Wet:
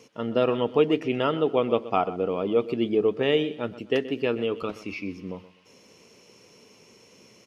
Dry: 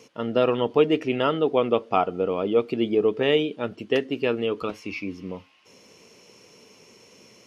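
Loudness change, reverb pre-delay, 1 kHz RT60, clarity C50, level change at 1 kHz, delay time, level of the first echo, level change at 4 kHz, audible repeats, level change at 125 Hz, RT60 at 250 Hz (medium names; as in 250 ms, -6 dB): -1.5 dB, no reverb, no reverb, no reverb, -2.0 dB, 126 ms, -16.0 dB, -2.5 dB, 2, -0.5 dB, no reverb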